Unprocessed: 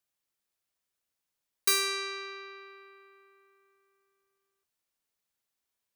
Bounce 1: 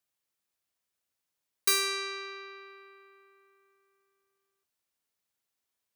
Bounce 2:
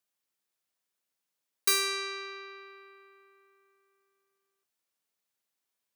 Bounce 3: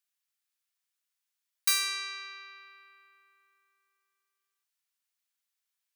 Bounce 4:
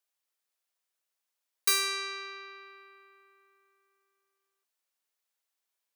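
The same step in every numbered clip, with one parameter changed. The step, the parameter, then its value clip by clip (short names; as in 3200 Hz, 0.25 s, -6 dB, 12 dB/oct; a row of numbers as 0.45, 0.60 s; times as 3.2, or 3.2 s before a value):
HPF, cutoff: 46, 140, 1300, 460 Hz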